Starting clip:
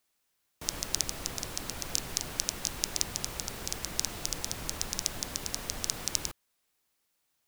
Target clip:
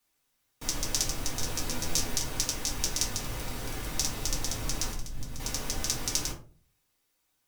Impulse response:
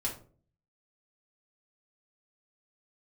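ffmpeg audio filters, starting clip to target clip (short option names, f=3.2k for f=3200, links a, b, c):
-filter_complex "[0:a]asettb=1/sr,asplit=3[a][b][c];[a]atrim=end=1.384[d];[b]atrim=start=1.38:end=2.12,asetpts=PTS-STARTPTS,afade=t=in:d=0.004:c=qsin,afade=t=out:st=0.736:d=0.004:c=qsin,asplit=2[e][f];[f]adelay=12,volume=-3.5dB[g];[e][g]amix=inputs=2:normalize=0,atrim=end_sample=32634[h];[c]atrim=start=2.116[i];[d][h]acrossfade=d=0.004:c1=hsin:c2=qsin[j];[j][i]acrossfade=d=0.004:c1=qsin:c2=hsin,asettb=1/sr,asplit=3[k][l][m];[k]atrim=end=3.194[n];[l]atrim=start=3.19:end=3.92,asetpts=PTS-STARTPTS,afade=t=in:d=0.004:c=qsin,afade=t=out:st=0.726:d=0.004:c=qsin,aeval=exprs='0.0562*(abs(mod(val(0)/0.0562+3,4)-2)-1)':c=same[o];[m]atrim=start=3.916[p];[n][o]acrossfade=d=0.004:c1=hsin:c2=qsin[q];[q][p]acrossfade=d=0.004:c1=qsin:c2=hsin,asettb=1/sr,asplit=3[r][s][t];[r]atrim=end=4.914[u];[s]atrim=start=4.91:end=5.4,asetpts=PTS-STARTPTS,afade=t=in:d=0.004:c=qsin,afade=t=out:st=0.486:d=0.004:c=qsin,acrossover=split=200[v][w];[w]acompressor=threshold=-43dB:ratio=6[x];[v][x]amix=inputs=2:normalize=0[y];[t]atrim=start=5.396[z];[u][y]acrossfade=d=0.004:c1=hsin:c2=qsin[aa];[aa][z]acrossfade=d=0.004:c1=qsin:c2=hsin[ab];[1:a]atrim=start_sample=2205,asetrate=48510,aresample=44100[ac];[ab][ac]afir=irnorm=-1:irlink=0"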